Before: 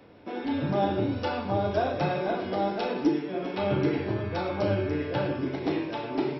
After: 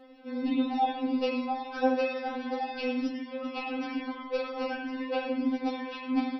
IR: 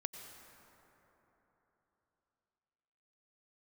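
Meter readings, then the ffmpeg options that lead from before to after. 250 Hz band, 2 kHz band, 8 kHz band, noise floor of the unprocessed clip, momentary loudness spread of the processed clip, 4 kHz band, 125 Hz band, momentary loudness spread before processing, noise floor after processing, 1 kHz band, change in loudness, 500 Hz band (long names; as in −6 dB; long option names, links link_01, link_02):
−1.0 dB, −1.0 dB, can't be measured, −37 dBFS, 7 LU, −1.0 dB, below −30 dB, 4 LU, −43 dBFS, −1.5 dB, −3.0 dB, −4.5 dB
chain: -filter_complex "[0:a]asplit=2[link_01][link_02];[1:a]atrim=start_sample=2205,afade=type=out:start_time=0.22:duration=0.01,atrim=end_sample=10143,lowshelf=frequency=340:gain=6[link_03];[link_02][link_03]afir=irnorm=-1:irlink=0,volume=-2dB[link_04];[link_01][link_04]amix=inputs=2:normalize=0,afftfilt=real='re*3.46*eq(mod(b,12),0)':imag='im*3.46*eq(mod(b,12),0)':win_size=2048:overlap=0.75,volume=-3dB"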